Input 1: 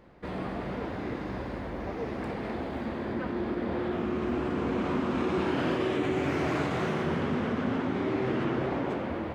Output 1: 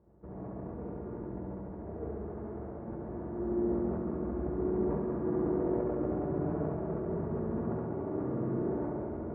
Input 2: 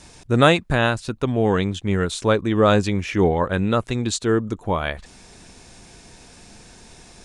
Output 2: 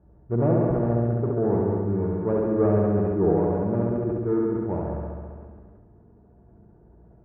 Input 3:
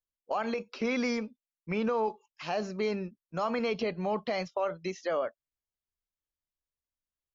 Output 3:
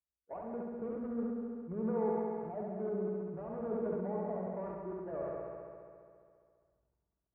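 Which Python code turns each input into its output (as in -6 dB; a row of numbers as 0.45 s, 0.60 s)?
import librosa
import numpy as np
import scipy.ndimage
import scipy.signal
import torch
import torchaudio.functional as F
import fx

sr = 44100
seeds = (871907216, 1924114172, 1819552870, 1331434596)

y = scipy.ndimage.median_filter(x, 41, mode='constant')
y = scipy.signal.sosfilt(scipy.signal.butter(4, 1300.0, 'lowpass', fs=sr, output='sos'), y)
y = fx.notch_comb(y, sr, f0_hz=260.0)
y = fx.room_flutter(y, sr, wall_m=11.7, rt60_s=1.5)
y = fx.dynamic_eq(y, sr, hz=420.0, q=0.72, threshold_db=-30.0, ratio=4.0, max_db=4)
y = scipy.signal.sosfilt(scipy.signal.butter(2, 40.0, 'highpass', fs=sr, output='sos'), y)
y = fx.peak_eq(y, sr, hz=60.0, db=7.0, octaves=0.28)
y = y + 10.0 ** (-8.0 / 20.0) * np.pad(y, (int(188 * sr / 1000.0), 0))[:len(y)]
y = fx.sustainer(y, sr, db_per_s=26.0)
y = y * librosa.db_to_amplitude(-7.5)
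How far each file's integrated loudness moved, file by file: -4.0 LU, -3.5 LU, -6.0 LU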